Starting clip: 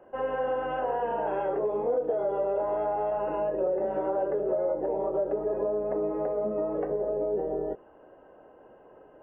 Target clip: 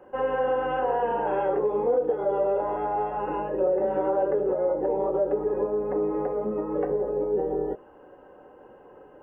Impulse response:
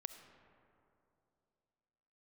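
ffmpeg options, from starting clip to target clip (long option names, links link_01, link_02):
-af "asuperstop=centerf=650:order=8:qfactor=7.9,volume=4dB"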